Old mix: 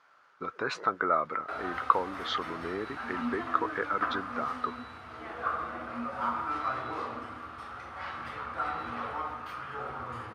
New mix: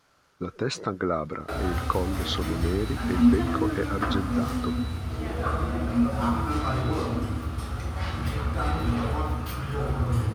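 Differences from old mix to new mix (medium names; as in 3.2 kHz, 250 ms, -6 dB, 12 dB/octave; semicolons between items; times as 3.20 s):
speech -5.0 dB; master: remove band-pass filter 1.3 kHz, Q 1.2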